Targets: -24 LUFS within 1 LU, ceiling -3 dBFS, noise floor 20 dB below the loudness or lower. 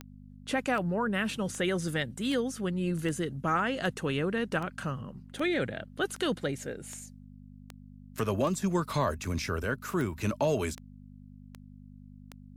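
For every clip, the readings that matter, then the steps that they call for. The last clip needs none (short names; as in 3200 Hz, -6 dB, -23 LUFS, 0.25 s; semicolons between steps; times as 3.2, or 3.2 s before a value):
clicks 17; hum 50 Hz; harmonics up to 250 Hz; hum level -49 dBFS; loudness -31.5 LUFS; peak -15.5 dBFS; loudness target -24.0 LUFS
-> de-click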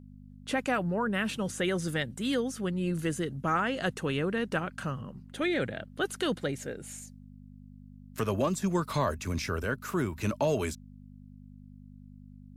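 clicks 0; hum 50 Hz; harmonics up to 250 Hz; hum level -49 dBFS
-> de-hum 50 Hz, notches 5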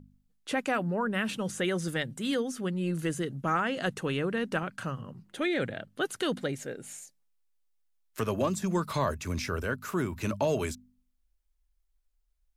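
hum none; loudness -31.5 LUFS; peak -15.5 dBFS; loudness target -24.0 LUFS
-> gain +7.5 dB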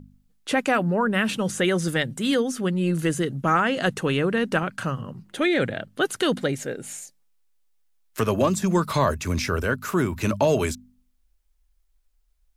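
loudness -24.0 LUFS; peak -8.0 dBFS; noise floor -66 dBFS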